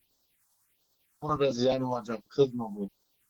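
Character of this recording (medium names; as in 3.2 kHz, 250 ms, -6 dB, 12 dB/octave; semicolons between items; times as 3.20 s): a quantiser's noise floor 12-bit, dither triangular; tremolo triangle 10 Hz, depth 40%; phasing stages 4, 1.4 Hz, lowest notch 370–2300 Hz; Opus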